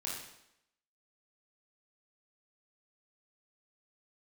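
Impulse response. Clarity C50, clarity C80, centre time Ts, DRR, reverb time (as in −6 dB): 1.0 dB, 5.0 dB, 56 ms, −5.0 dB, 0.80 s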